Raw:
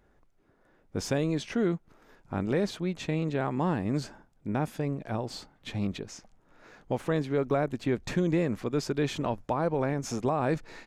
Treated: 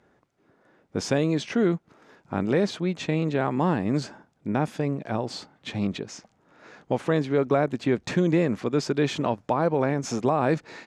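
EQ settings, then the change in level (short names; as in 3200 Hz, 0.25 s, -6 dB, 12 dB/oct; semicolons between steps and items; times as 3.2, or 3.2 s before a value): BPF 120–7800 Hz; +5.0 dB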